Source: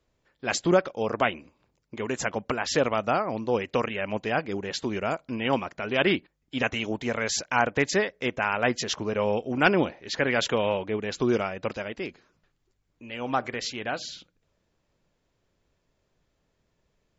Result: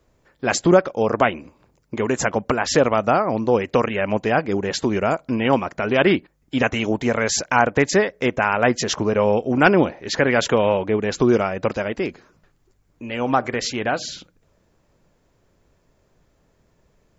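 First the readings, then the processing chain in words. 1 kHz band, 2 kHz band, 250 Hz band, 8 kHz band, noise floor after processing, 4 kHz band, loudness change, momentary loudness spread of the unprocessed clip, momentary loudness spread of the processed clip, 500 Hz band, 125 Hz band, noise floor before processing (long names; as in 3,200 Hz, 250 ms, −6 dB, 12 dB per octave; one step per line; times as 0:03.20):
+7.0 dB, +5.5 dB, +8.0 dB, can't be measured, −64 dBFS, +3.5 dB, +7.0 dB, 10 LU, 9 LU, +8.0 dB, +8.5 dB, −75 dBFS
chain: parametric band 3,400 Hz −6.5 dB 1.5 octaves
in parallel at 0 dB: downward compressor, threshold −32 dBFS, peak gain reduction 15.5 dB
on the sum: level +5.5 dB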